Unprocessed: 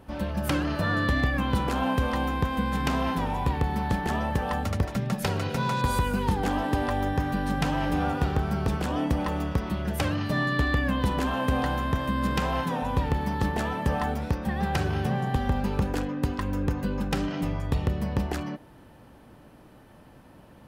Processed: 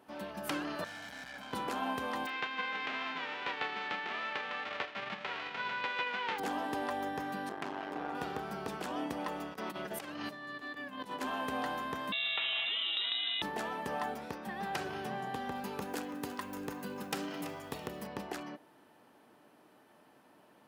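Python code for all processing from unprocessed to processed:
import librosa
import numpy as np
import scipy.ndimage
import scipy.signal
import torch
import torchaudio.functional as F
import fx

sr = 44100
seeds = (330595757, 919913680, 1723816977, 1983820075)

y = fx.chain(x, sr, fx.peak_eq(hz=740.0, db=-3.0, octaves=1.9),
    fx.tube_stage(drive_db=36.0, bias=0.65),
    fx.comb(ms=1.3, depth=0.65), at=(0.84, 1.53))
y = fx.envelope_flatten(y, sr, power=0.1, at=(2.25, 6.38), fade=0.02)
y = fx.lowpass(y, sr, hz=2900.0, slope=24, at=(2.25, 6.38), fade=0.02)
y = fx.doubler(y, sr, ms=34.0, db=-13.5, at=(2.25, 6.38), fade=0.02)
y = fx.chain(y, sr, fx.high_shelf(hz=6700.0, db=-12.0),
    fx.transformer_sat(knee_hz=430.0), at=(7.49, 8.15))
y = fx.chain(y, sr, fx.highpass(hz=100.0, slope=12),
    fx.over_compress(threshold_db=-31.0, ratio=-0.5), at=(9.54, 11.21))
y = fx.chain(y, sr, fx.low_shelf(hz=310.0, db=-10.0),
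    fx.freq_invert(carrier_hz=3800),
    fx.env_flatten(amount_pct=70), at=(12.12, 13.42))
y = fx.chain(y, sr, fx.high_shelf(hz=8200.0, db=9.5),
    fx.echo_crushed(ms=332, feedback_pct=35, bits=8, wet_db=-13), at=(15.55, 18.07))
y = scipy.signal.sosfilt(scipy.signal.butter(2, 320.0, 'highpass', fs=sr, output='sos'), y)
y = fx.notch(y, sr, hz=530.0, q=12.0)
y = y * librosa.db_to_amplitude(-6.5)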